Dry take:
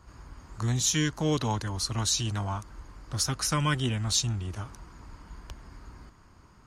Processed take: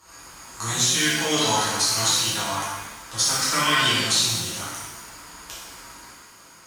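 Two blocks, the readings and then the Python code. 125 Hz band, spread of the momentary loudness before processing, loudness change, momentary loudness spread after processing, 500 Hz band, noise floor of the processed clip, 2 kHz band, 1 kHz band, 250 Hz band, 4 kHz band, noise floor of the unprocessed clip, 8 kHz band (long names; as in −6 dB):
−5.0 dB, 21 LU, +7.5 dB, 20 LU, +5.5 dB, −49 dBFS, +12.5 dB, +9.5 dB, +1.0 dB, +11.0 dB, −56 dBFS, +8.5 dB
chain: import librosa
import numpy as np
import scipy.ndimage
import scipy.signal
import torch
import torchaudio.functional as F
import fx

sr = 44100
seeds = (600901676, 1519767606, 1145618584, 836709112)

y = fx.riaa(x, sr, side='recording')
y = fx.env_lowpass_down(y, sr, base_hz=2300.0, full_db=-17.5)
y = fx.low_shelf(y, sr, hz=200.0, db=-5.5)
y = fx.rev_shimmer(y, sr, seeds[0], rt60_s=1.1, semitones=7, shimmer_db=-8, drr_db=-9.5)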